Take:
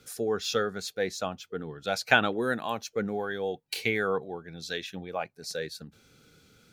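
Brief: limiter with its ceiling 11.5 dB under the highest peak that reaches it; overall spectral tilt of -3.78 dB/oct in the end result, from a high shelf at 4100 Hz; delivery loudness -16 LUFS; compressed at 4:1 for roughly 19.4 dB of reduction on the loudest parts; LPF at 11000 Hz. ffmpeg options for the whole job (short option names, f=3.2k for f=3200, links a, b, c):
-af "lowpass=11k,highshelf=f=4.1k:g=-5.5,acompressor=threshold=-40dB:ratio=4,volume=28.5dB,alimiter=limit=-3.5dB:level=0:latency=1"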